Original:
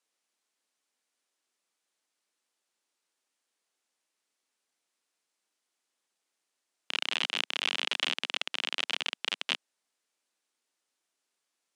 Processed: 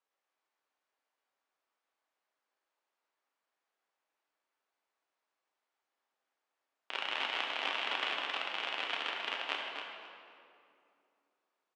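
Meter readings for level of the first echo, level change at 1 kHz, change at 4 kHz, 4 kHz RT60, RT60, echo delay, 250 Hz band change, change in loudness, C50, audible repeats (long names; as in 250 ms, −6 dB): −7.5 dB, +3.5 dB, −6.0 dB, 1.6 s, 2.6 s, 267 ms, −3.5 dB, −4.5 dB, 0.5 dB, 1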